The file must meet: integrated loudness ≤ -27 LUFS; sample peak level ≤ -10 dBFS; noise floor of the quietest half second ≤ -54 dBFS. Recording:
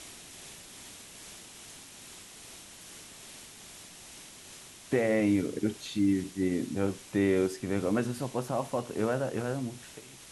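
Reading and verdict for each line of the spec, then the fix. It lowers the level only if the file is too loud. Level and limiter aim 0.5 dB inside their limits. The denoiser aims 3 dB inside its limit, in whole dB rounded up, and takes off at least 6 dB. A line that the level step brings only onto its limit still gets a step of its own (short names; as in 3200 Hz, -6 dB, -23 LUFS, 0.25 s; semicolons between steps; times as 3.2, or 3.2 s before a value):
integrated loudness -30.5 LUFS: OK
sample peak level -14.0 dBFS: OK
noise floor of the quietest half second -50 dBFS: fail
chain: denoiser 7 dB, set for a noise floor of -50 dBFS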